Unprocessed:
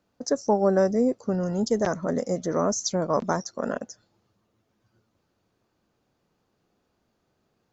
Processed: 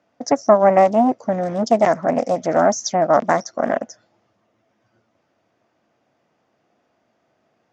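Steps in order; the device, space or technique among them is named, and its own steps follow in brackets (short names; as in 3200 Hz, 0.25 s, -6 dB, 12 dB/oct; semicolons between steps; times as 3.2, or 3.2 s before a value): full-range speaker at full volume (Doppler distortion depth 0.62 ms; speaker cabinet 150–6200 Hz, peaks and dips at 180 Hz -5 dB, 410 Hz -4 dB, 660 Hz +8 dB, 2000 Hz +5 dB, 4200 Hz -8 dB); gain +6.5 dB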